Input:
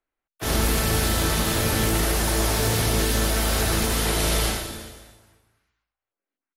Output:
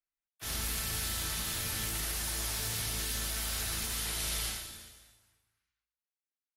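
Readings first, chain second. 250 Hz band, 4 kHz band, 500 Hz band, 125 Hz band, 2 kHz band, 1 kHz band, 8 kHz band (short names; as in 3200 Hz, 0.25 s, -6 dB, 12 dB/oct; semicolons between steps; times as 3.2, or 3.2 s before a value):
-20.5 dB, -9.0 dB, -22.0 dB, -16.5 dB, -12.0 dB, -16.5 dB, -8.0 dB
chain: passive tone stack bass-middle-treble 5-5-5; gain -2 dB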